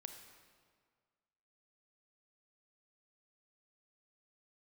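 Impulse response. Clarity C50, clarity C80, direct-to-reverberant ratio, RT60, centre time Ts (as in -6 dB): 6.5 dB, 7.5 dB, 5.5 dB, 1.8 s, 34 ms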